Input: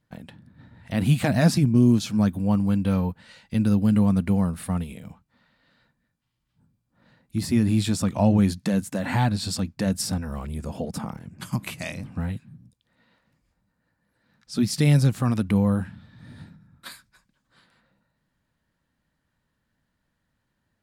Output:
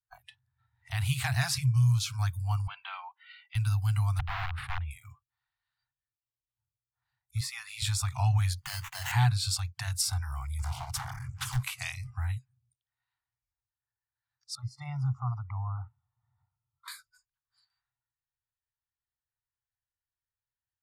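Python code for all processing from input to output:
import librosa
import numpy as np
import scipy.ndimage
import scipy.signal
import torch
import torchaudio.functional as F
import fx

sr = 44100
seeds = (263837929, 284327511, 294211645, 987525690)

y = fx.chain(x, sr, fx.cheby1_bandpass(low_hz=330.0, high_hz=3200.0, order=3),
    fx.high_shelf(hz=2500.0, db=5.0), at=(2.67, 3.55))
y = fx.chain(y, sr, fx.overflow_wrap(gain_db=20.0),
    fx.air_absorb(metres=440.0),
    fx.sustainer(db_per_s=70.0), at=(4.19, 4.91))
y = fx.chain(y, sr, fx.highpass(hz=510.0, slope=12),
    fx.high_shelf(hz=9100.0, db=-7.0), at=(7.4, 7.82))
y = fx.chain(y, sr, fx.high_shelf(hz=12000.0, db=-4.0),
    fx.sample_hold(seeds[0], rate_hz=4700.0, jitter_pct=0), at=(8.58, 9.12))
y = fx.chain(y, sr, fx.power_curve(exponent=0.7),
    fx.doppler_dist(depth_ms=0.96), at=(10.59, 11.63))
y = fx.chain(y, sr, fx.savgol(points=65),
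    fx.low_shelf(hz=190.0, db=-8.5), at=(14.55, 16.88))
y = fx.noise_reduce_blind(y, sr, reduce_db=22)
y = scipy.signal.sosfilt(scipy.signal.cheby1(5, 1.0, [130.0, 730.0], 'bandstop', fs=sr, output='sos'), y)
y = fx.dynamic_eq(y, sr, hz=650.0, q=0.78, threshold_db=-46.0, ratio=4.0, max_db=-6)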